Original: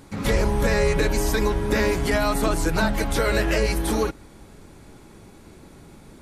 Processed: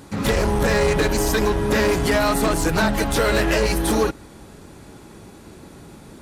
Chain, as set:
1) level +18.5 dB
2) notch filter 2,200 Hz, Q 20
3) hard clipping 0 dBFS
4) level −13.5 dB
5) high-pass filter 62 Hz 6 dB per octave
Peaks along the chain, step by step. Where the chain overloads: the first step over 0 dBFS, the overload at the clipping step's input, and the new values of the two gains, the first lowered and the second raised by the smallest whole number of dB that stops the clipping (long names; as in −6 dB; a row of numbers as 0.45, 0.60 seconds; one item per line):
+9.0, +9.0, 0.0, −13.5, −9.0 dBFS
step 1, 9.0 dB
step 1 +9.5 dB, step 4 −4.5 dB